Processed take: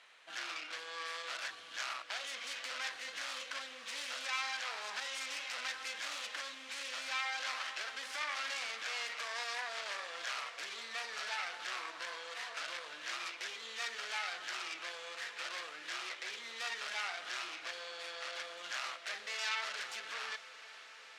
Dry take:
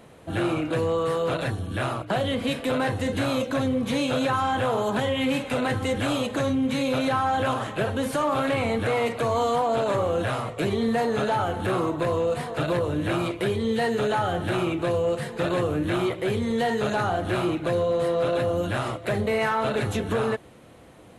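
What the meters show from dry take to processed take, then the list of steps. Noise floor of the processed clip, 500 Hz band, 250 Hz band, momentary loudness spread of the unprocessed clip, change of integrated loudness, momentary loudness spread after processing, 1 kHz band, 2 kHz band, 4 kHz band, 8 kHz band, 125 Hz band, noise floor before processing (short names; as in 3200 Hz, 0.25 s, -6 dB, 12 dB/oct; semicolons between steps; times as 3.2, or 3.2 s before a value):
-53 dBFS, -28.0 dB, -39.0 dB, 3 LU, -14.5 dB, 6 LU, -17.0 dB, -7.0 dB, -5.0 dB, -4.0 dB, under -40 dB, -48 dBFS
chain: tracing distortion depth 0.45 ms; limiter -22.5 dBFS, peak gain reduction 6.5 dB; Butterworth band-pass 3100 Hz, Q 0.68; on a send: diffused feedback echo 0.467 s, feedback 79%, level -16 dB; on the sum: gain -1 dB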